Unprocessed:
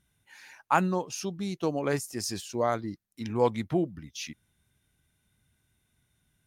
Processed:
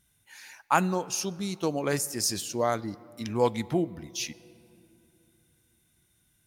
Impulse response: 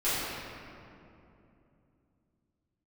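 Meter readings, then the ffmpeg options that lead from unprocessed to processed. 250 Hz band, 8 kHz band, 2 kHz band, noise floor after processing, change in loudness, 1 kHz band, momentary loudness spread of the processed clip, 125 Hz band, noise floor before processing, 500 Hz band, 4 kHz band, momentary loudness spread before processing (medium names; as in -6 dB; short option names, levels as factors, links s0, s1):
+0.5 dB, +7.0 dB, +1.5 dB, -69 dBFS, +1.0 dB, +0.5 dB, 13 LU, 0.0 dB, -76 dBFS, +0.5 dB, +5.0 dB, 13 LU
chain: -filter_complex "[0:a]highshelf=f=4400:g=9.5,asplit=2[s0][s1];[1:a]atrim=start_sample=2205[s2];[s1][s2]afir=irnorm=-1:irlink=0,volume=0.0299[s3];[s0][s3]amix=inputs=2:normalize=0"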